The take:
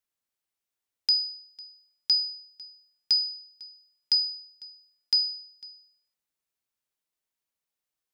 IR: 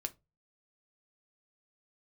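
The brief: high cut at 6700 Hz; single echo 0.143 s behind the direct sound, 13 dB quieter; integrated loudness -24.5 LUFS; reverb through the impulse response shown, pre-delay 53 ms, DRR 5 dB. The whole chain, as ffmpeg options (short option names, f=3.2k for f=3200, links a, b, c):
-filter_complex "[0:a]lowpass=6.7k,aecho=1:1:143:0.224,asplit=2[a][b];[1:a]atrim=start_sample=2205,adelay=53[c];[b][c]afir=irnorm=-1:irlink=0,volume=-4dB[d];[a][d]amix=inputs=2:normalize=0,volume=2.5dB"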